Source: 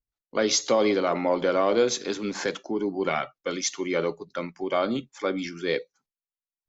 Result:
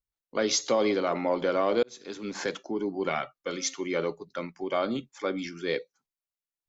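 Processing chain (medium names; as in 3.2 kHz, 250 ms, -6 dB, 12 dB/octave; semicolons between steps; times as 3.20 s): 1.83–2.41 s: fade in; 3.33–3.74 s: de-hum 133.6 Hz, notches 28; trim -3 dB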